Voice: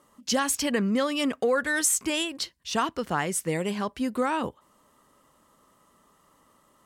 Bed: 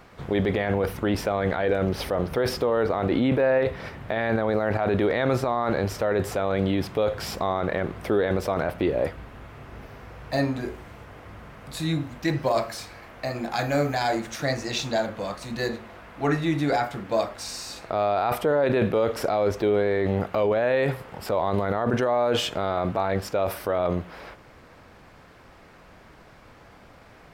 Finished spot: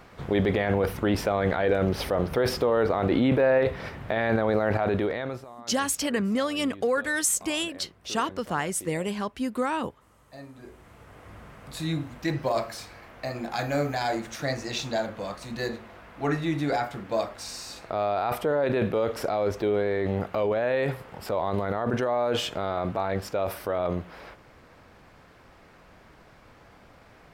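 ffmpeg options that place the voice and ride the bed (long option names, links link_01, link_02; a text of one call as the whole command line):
ffmpeg -i stem1.wav -i stem2.wav -filter_complex "[0:a]adelay=5400,volume=-1dB[link_01];[1:a]volume=17dB,afade=type=out:start_time=4.75:duration=0.7:silence=0.1,afade=type=in:start_time=10.53:duration=0.82:silence=0.141254[link_02];[link_01][link_02]amix=inputs=2:normalize=0" out.wav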